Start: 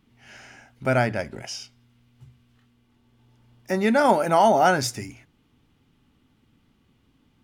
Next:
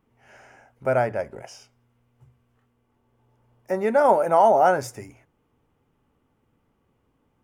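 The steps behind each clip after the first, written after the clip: graphic EQ 250/500/1000/4000 Hz -4/+9/+5/-11 dB; gain -5.5 dB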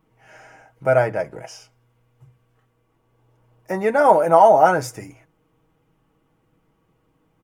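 comb 6.3 ms, depth 59%; gain +3 dB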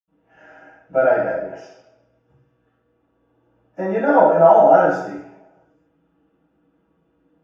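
reverb RT60 0.70 s, pre-delay 77 ms; gain -16.5 dB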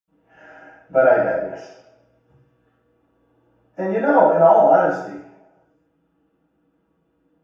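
vocal rider 2 s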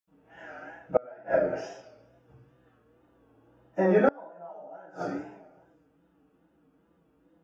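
wow and flutter 90 cents; flipped gate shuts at -9 dBFS, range -32 dB

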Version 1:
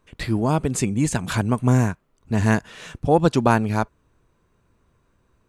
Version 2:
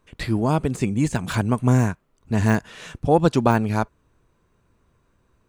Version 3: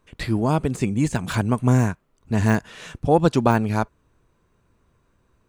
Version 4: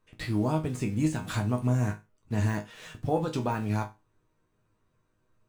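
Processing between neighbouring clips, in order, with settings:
de-esser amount 60%
nothing audible
in parallel at -11.5 dB: bit-crush 6-bit; on the sum: limiter -9 dBFS, peak gain reduction 8 dB; resonator bank G#2 minor, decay 0.25 s; gain +3.5 dB

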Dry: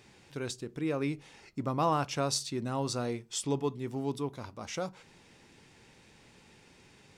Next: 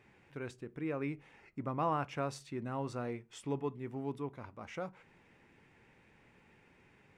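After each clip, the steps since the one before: resonant high shelf 3100 Hz -11 dB, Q 1.5; gain -5.5 dB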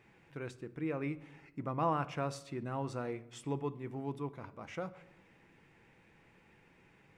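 shoebox room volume 3600 m³, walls furnished, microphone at 0.69 m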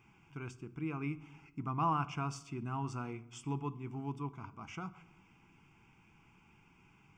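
fixed phaser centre 2700 Hz, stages 8; gain +2.5 dB

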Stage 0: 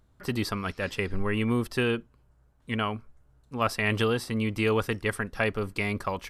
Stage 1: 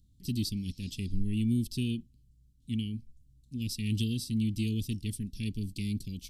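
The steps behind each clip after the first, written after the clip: inverse Chebyshev band-stop 680–1400 Hz, stop band 70 dB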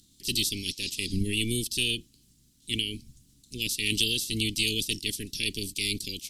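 spectral limiter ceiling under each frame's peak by 22 dB; bell 6400 Hz +9.5 dB 3 oct; gain -1.5 dB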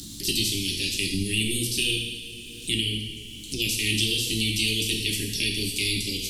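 two-slope reverb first 0.82 s, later 2.5 s, DRR -1 dB; three-band squash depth 70%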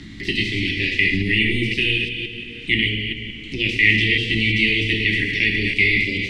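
reverse delay 0.174 s, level -5.5 dB; synth low-pass 2000 Hz, resonance Q 13; gain +5 dB

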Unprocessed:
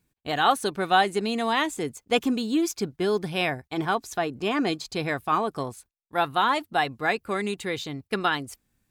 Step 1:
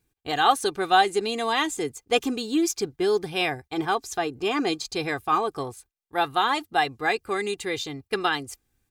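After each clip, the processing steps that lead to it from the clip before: comb 2.5 ms, depth 52%; dynamic EQ 6300 Hz, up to +5 dB, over -43 dBFS, Q 0.88; gain -1 dB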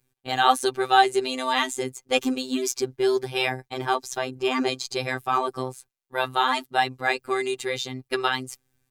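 robotiser 129 Hz; gain +3 dB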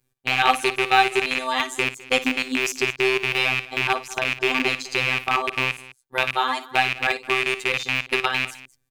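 rattling part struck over -36 dBFS, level -9 dBFS; tapped delay 56/206 ms -12/-17.5 dB; transient shaper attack +2 dB, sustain -2 dB; gain -1 dB

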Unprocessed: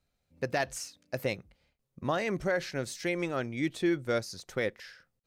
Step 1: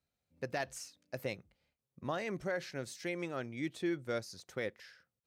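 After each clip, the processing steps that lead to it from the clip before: HPF 65 Hz; gain -7 dB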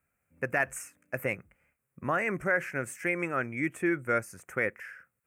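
EQ curve 880 Hz 0 dB, 1400 Hz +9 dB, 2500 Hz +5 dB, 3900 Hz -27 dB, 8100 Hz +4 dB; gain +6 dB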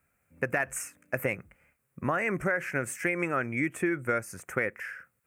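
compressor, threshold -30 dBFS, peak gain reduction 8.5 dB; gain +5.5 dB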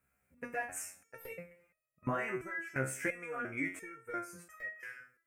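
two-slope reverb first 0.66 s, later 1.8 s, from -19 dB, DRR 15.5 dB; stuck buffer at 1.2/4.55, samples 256, times 8; stepped resonator 2.9 Hz 66–630 Hz; gain +3 dB

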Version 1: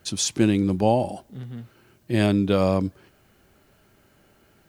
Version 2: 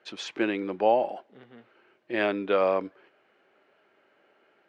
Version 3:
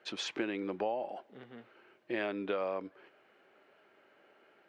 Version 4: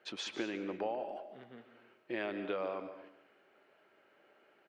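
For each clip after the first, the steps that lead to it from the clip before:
dynamic EQ 1500 Hz, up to +5 dB, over -41 dBFS, Q 0.94; Chebyshev band-pass 430–2500 Hz, order 2; gain -1.5 dB
compressor 4:1, threshold -33 dBFS, peak gain reduction 14 dB
feedback echo 0.145 s, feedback 27%, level -13 dB; on a send at -12 dB: reverb RT60 0.35 s, pre-delay 0.16 s; on the sum: gain -3 dB

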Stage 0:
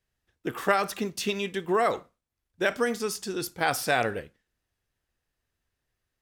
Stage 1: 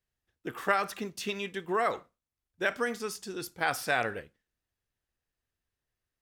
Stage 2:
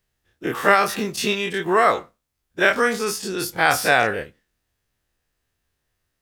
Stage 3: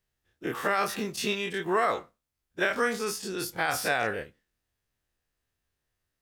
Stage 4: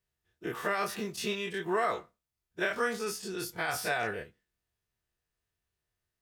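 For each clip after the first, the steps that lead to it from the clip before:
dynamic EQ 1600 Hz, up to +5 dB, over -38 dBFS, Q 0.72; gain -6.5 dB
spectral dilation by 60 ms; gain +8 dB
limiter -8 dBFS, peak gain reduction 6.5 dB; gain -7 dB
notch comb 270 Hz; gain -3 dB

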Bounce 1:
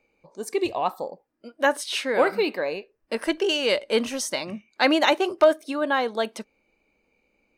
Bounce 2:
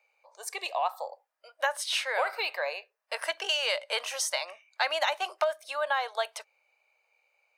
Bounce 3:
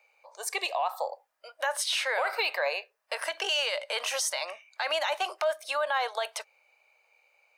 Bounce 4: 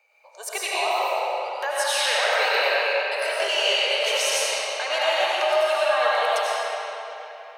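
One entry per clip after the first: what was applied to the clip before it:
steep high-pass 610 Hz 36 dB/oct; compressor 6:1, threshold -24 dBFS, peak gain reduction 10 dB
limiter -25 dBFS, peak gain reduction 11.5 dB; gain +5.5 dB
digital reverb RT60 3.5 s, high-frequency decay 0.75×, pre-delay 55 ms, DRR -7.5 dB

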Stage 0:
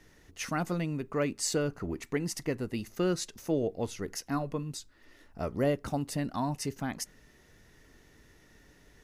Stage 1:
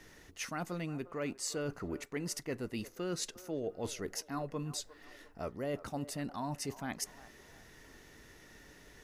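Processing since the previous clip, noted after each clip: low shelf 260 Hz -5.5 dB; reverse; compressor 4:1, threshold -41 dBFS, peak gain reduction 13.5 dB; reverse; band-limited delay 0.353 s, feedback 43%, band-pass 840 Hz, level -15 dB; gain +4.5 dB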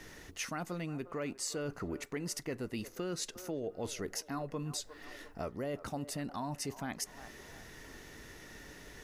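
compressor 2.5:1, threshold -43 dBFS, peak gain reduction 7.5 dB; gain +5.5 dB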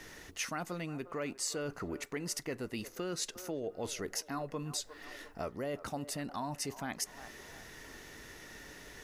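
low shelf 370 Hz -4.5 dB; gain +2 dB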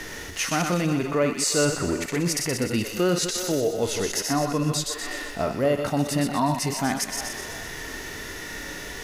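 reverse delay 0.103 s, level -7.5 dB; thin delay 0.124 s, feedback 54%, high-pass 2000 Hz, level -7.5 dB; harmonic-percussive split harmonic +9 dB; gain +8 dB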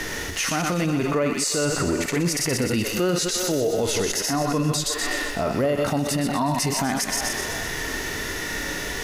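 limiter -21 dBFS, peak gain reduction 10 dB; gain +6.5 dB

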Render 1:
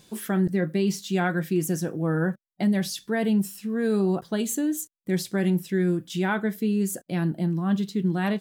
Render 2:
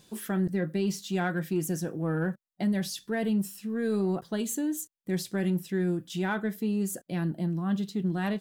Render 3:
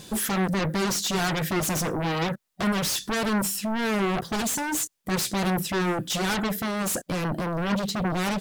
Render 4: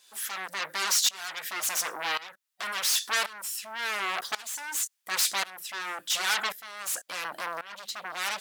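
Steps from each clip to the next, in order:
in parallel at -11 dB: soft clip -27 dBFS, distortion -9 dB; on the sum: notch 2200 Hz, Q 26; gain -5.5 dB
dynamic EQ 6600 Hz, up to +5 dB, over -49 dBFS, Q 1; in parallel at -9 dB: sine folder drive 18 dB, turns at -17 dBFS
HPF 1200 Hz 12 dB/oct; tremolo saw up 0.92 Hz, depth 90%; gain +5 dB

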